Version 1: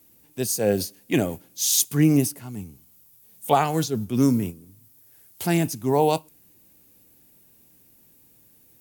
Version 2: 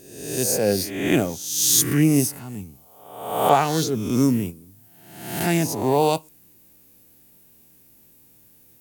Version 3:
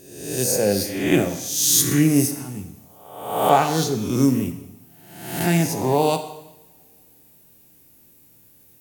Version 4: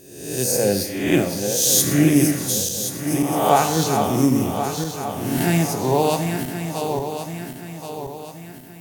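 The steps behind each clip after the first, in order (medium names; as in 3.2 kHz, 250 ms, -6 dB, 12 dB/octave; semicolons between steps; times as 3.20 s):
reverse spectral sustain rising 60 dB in 0.87 s
two-slope reverb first 0.89 s, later 3 s, from -27 dB, DRR 6.5 dB
backward echo that repeats 538 ms, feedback 66%, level -6 dB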